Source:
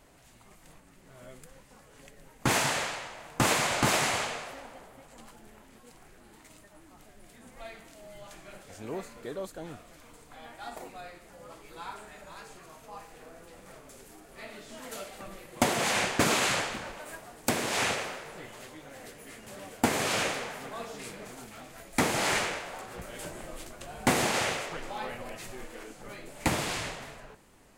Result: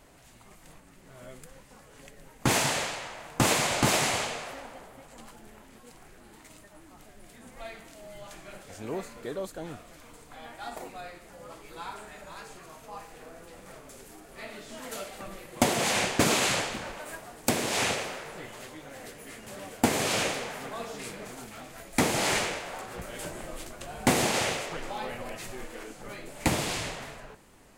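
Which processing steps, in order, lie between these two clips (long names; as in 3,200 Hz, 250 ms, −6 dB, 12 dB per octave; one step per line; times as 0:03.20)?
dynamic equaliser 1,400 Hz, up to −4 dB, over −40 dBFS, Q 0.94
level +2.5 dB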